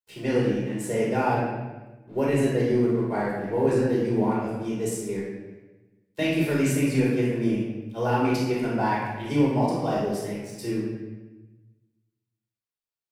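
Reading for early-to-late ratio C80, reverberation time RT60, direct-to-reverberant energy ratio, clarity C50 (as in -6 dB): 2.5 dB, 1.1 s, -7.0 dB, -0.5 dB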